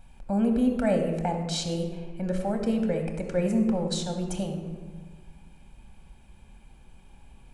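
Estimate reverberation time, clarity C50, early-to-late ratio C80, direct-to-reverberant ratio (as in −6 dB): 1.4 s, 6.0 dB, 7.5 dB, 3.5 dB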